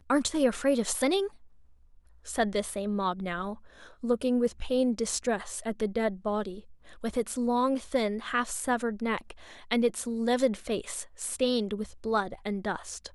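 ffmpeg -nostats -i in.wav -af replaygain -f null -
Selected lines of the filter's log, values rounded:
track_gain = +9.1 dB
track_peak = 0.161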